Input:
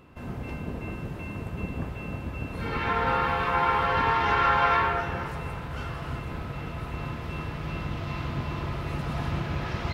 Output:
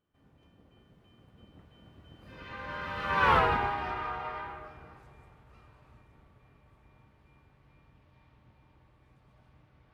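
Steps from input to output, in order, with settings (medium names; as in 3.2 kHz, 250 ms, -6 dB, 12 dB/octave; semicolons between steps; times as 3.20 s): Doppler pass-by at 3.34 s, 43 m/s, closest 4.2 m; trim +3 dB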